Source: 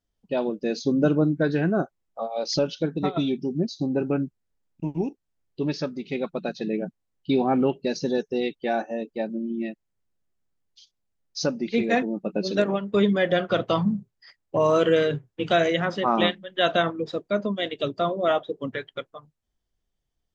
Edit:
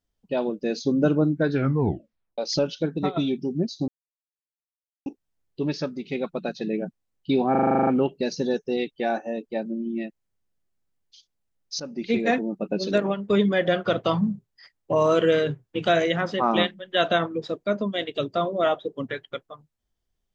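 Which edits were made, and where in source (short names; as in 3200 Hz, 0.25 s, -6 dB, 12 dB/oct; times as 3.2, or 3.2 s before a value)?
1.51 tape stop 0.87 s
3.88–5.06 mute
7.51 stutter 0.04 s, 10 plays
11.44–11.71 fade in, from -16 dB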